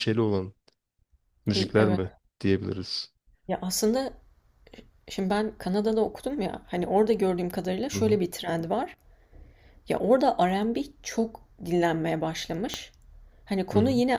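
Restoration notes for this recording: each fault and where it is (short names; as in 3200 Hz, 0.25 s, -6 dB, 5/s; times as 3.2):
12.74 pop -14 dBFS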